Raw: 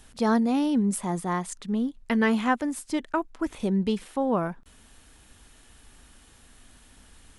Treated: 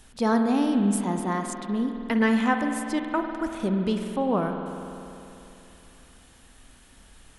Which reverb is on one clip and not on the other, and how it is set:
spring reverb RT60 3 s, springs 49 ms, chirp 20 ms, DRR 4.5 dB

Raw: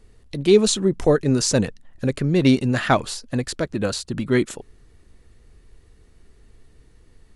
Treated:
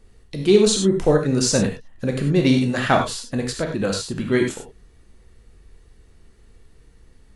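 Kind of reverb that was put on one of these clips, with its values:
reverb whose tail is shaped and stops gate 120 ms flat, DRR 2 dB
level −1 dB

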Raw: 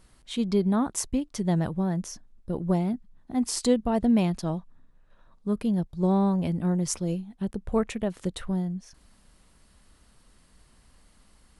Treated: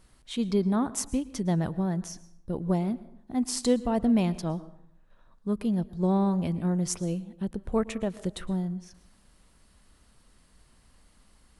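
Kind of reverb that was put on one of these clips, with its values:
dense smooth reverb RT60 0.7 s, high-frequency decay 0.6×, pre-delay 100 ms, DRR 17 dB
level −1.5 dB

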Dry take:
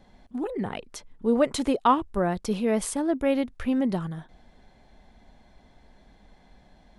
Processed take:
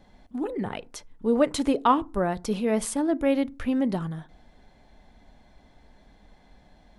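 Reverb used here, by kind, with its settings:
feedback delay network reverb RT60 0.33 s, low-frequency decay 1.45×, high-frequency decay 0.5×, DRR 17 dB

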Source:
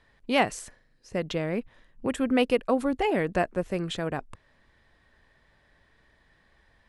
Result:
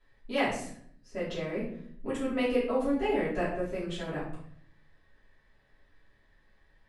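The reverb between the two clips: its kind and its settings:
rectangular room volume 96 cubic metres, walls mixed, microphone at 2.9 metres
level −16 dB

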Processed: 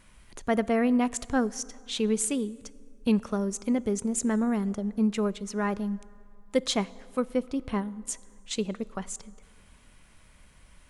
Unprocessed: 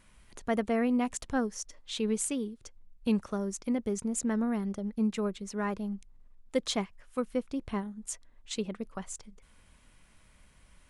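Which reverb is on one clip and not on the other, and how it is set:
dense smooth reverb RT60 2.3 s, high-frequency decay 0.55×, DRR 19.5 dB
level +4 dB

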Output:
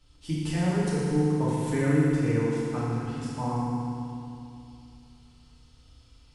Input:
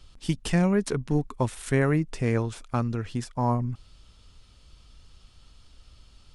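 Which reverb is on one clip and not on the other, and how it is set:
feedback delay network reverb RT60 2.7 s, low-frequency decay 1.2×, high-frequency decay 0.9×, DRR −9.5 dB
level −12 dB

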